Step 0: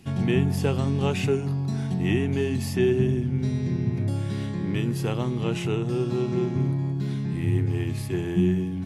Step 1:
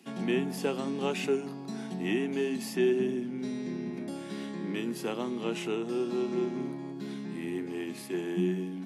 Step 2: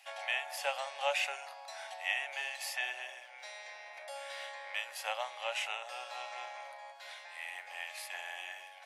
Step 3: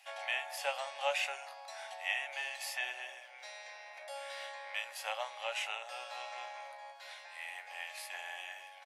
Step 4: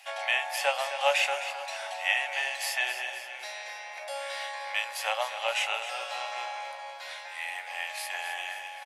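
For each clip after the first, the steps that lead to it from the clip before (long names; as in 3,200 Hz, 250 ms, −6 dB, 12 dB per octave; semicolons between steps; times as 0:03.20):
Butterworth high-pass 200 Hz 36 dB per octave; level −3.5 dB
Chebyshev high-pass with heavy ripple 550 Hz, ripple 6 dB; level +5.5 dB
double-tracking delay 18 ms −12 dB; level −1.5 dB
repeating echo 262 ms, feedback 54%, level −11 dB; level +8.5 dB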